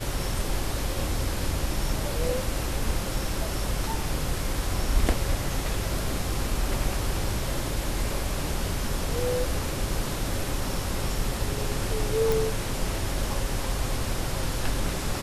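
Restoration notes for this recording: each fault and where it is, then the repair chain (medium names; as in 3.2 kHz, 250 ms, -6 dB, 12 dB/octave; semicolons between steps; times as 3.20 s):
12.32 s: pop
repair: de-click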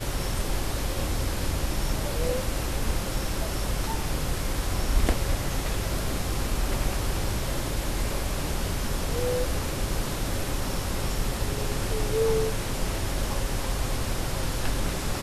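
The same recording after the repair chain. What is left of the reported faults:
nothing left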